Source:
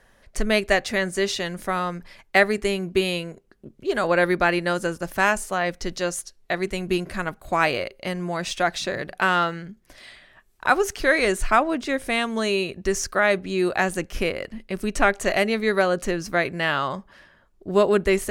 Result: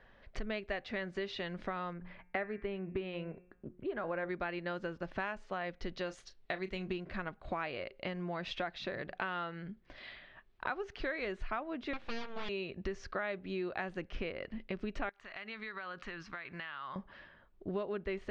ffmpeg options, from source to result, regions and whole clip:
ffmpeg -i in.wav -filter_complex "[0:a]asettb=1/sr,asplit=3[link_01][link_02][link_03];[link_01]atrim=end=1.934[link_04];[link_02]atrim=start=1.93:end=4.29,asetpts=PTS-STARTPTS,afade=type=in:duration=0.004:curve=qsin,afade=type=out:start_time=2.356:duration=0.004:curve=qsin,lowpass=2100,bandreject=frequency=179.4:width_type=h:width=4,bandreject=frequency=358.8:width_type=h:width=4,bandreject=frequency=538.2:width_type=h:width=4,bandreject=frequency=717.6:width_type=h:width=4,bandreject=frequency=897:width_type=h:width=4,bandreject=frequency=1076.4:width_type=h:width=4,bandreject=frequency=1255.8:width_type=h:width=4,bandreject=frequency=1435.2:width_type=h:width=4,bandreject=frequency=1614.6:width_type=h:width=4,bandreject=frequency=1794:width_type=h:width=4,bandreject=frequency=1973.4:width_type=h:width=4,bandreject=frequency=2152.8:width_type=h:width=4,bandreject=frequency=2332.2:width_type=h:width=4,bandreject=frequency=2511.6:width_type=h:width=4,bandreject=frequency=2691:width_type=h:width=4[link_05];[link_03]atrim=start=4.286[link_06];[link_04][link_05]acrossfade=duration=0.004:curve1=hsin:curve2=qsin[link_07];[link_07][link_06]acrossfade=duration=0.004:curve1=qsin:curve2=hsin,asettb=1/sr,asplit=3[link_08][link_09][link_10];[link_08]atrim=end=6.064[link_11];[link_09]atrim=start=6.06:end=6.93,asetpts=PTS-STARTPTS,afade=type=in:duration=0.004:curve=qsin,afade=type=out:start_time=0.866:duration=0.004:curve=qsin,aemphasis=mode=production:type=cd,asplit=2[link_12][link_13];[link_13]adelay=32,volume=-13dB[link_14];[link_12][link_14]amix=inputs=2:normalize=0,atrim=end_sample=38367[link_15];[link_10]atrim=start=6.926[link_16];[link_11][link_15]acrossfade=duration=0.004:curve1=hsin:curve2=qsin[link_17];[link_17][link_16]acrossfade=duration=0.004:curve1=qsin:curve2=hsin,asettb=1/sr,asplit=3[link_18][link_19][link_20];[link_18]atrim=end=11.934[link_21];[link_19]atrim=start=11.93:end=12.49,asetpts=PTS-STARTPTS,afade=type=in:duration=0.004:curve=qsin,afade=type=out:start_time=0.556:duration=0.004:curve=qsin,equalizer=frequency=3000:width=0.64:gain=6,bandreject=frequency=50:width_type=h:width=6,bandreject=frequency=100:width_type=h:width=6,bandreject=frequency=150:width_type=h:width=6,bandreject=frequency=200:width_type=h:width=6,bandreject=frequency=250:width_type=h:width=6,bandreject=frequency=300:width_type=h:width=6,bandreject=frequency=350:width_type=h:width=6,bandreject=frequency=400:width_type=h:width=6,bandreject=frequency=450:width_type=h:width=6,aeval=exprs='abs(val(0))':channel_layout=same[link_22];[link_20]atrim=start=12.486[link_23];[link_21][link_22]acrossfade=duration=0.004:curve1=hsin:curve2=qsin[link_24];[link_24][link_23]acrossfade=duration=0.004:curve1=qsin:curve2=hsin,asettb=1/sr,asplit=3[link_25][link_26][link_27];[link_25]atrim=end=15.094[link_28];[link_26]atrim=start=15.09:end=16.96,asetpts=PTS-STARTPTS,afade=type=in:duration=0.004:curve=qsin,afade=type=out:start_time=1.866:duration=0.004:curve=qsin,lowshelf=frequency=800:width_type=q:width=1.5:gain=-10,acompressor=threshold=-35dB:ratio=12:attack=3.2:release=140:knee=1:detection=peak[link_29];[link_27]atrim=start=16.956[link_30];[link_28][link_29]acrossfade=duration=0.004:curve1=hsin:curve2=qsin[link_31];[link_31][link_30]acrossfade=duration=0.004:curve1=qsin:curve2=hsin,lowpass=frequency=3800:width=0.5412,lowpass=frequency=3800:width=1.3066,acompressor=threshold=-32dB:ratio=5,volume=-4dB" out.wav

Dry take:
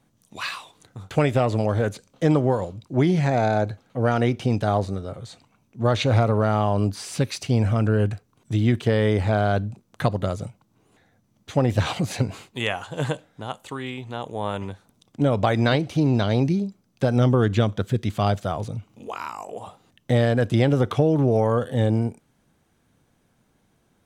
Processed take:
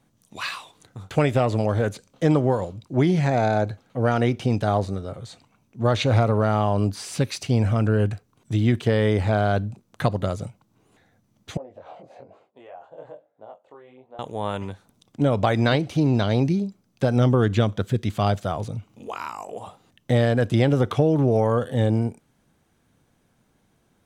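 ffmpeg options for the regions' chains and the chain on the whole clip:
ffmpeg -i in.wav -filter_complex "[0:a]asettb=1/sr,asplit=3[link_01][link_02][link_03];[link_01]atrim=end=11.574[link_04];[link_02]atrim=start=11.57:end=14.19,asetpts=PTS-STARTPTS,afade=type=in:duration=0.004:curve=qsin,afade=type=out:start_time=2.616:duration=0.004:curve=qsin,acompressor=threshold=-25dB:ratio=4:attack=3.2:release=140:knee=1:detection=peak,flanger=delay=18.5:depth=6.7:speed=1.1,bandpass=frequency=600:width_type=q:width=3.1[link_05];[link_03]atrim=start=14.186[link_06];[link_04][link_05]acrossfade=duration=0.004:curve1=hsin:curve2=qsin[link_07];[link_07][link_06]acrossfade=duration=0.004:curve1=qsin:curve2=hsin" out.wav

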